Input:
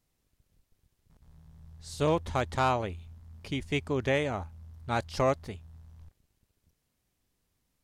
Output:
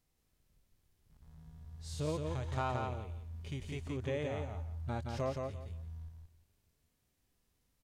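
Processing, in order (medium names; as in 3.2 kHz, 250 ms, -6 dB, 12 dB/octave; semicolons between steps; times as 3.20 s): harmonic-percussive split percussive -17 dB; compression 2.5:1, threshold -40 dBFS, peak gain reduction 11 dB; feedback delay 171 ms, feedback 21%, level -4 dB; trim +2 dB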